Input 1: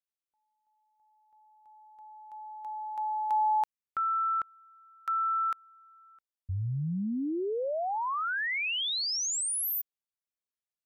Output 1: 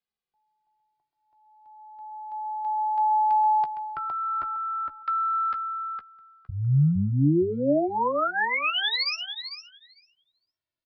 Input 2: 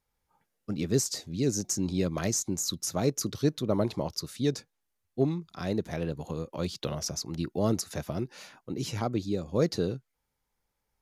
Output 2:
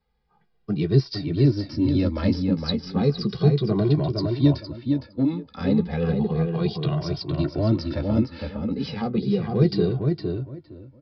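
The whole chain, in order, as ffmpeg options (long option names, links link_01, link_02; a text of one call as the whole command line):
ffmpeg -i in.wav -filter_complex "[0:a]lowshelf=frequency=450:gain=5.5,acrossover=split=300|4000[link_01][link_02][link_03];[link_02]acompressor=threshold=-26dB:ratio=6:attack=0.24:release=57:knee=2.83:detection=peak[link_04];[link_01][link_04][link_03]amix=inputs=3:normalize=0,aresample=11025,aresample=44100,asplit=2[link_05][link_06];[link_06]adelay=14,volume=-11.5dB[link_07];[link_05][link_07]amix=inputs=2:normalize=0,asplit=2[link_08][link_09];[link_09]adelay=461,lowpass=frequency=2400:poles=1,volume=-3.5dB,asplit=2[link_10][link_11];[link_11]adelay=461,lowpass=frequency=2400:poles=1,volume=0.21,asplit=2[link_12][link_13];[link_13]adelay=461,lowpass=frequency=2400:poles=1,volume=0.21[link_14];[link_08][link_10][link_12][link_14]amix=inputs=4:normalize=0,asplit=2[link_15][link_16];[link_16]adelay=2,afreqshift=-0.33[link_17];[link_15][link_17]amix=inputs=2:normalize=1,volume=6.5dB" out.wav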